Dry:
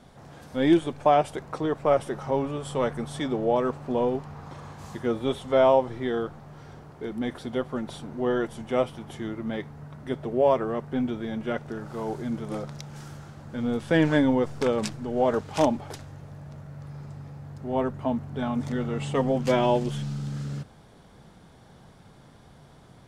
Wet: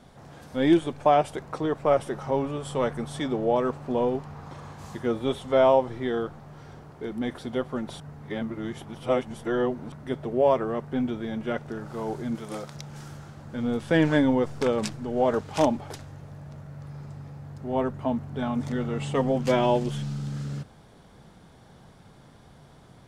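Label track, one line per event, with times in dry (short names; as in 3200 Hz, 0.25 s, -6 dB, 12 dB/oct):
8.000000	9.920000	reverse
12.350000	12.750000	tilt +2 dB/oct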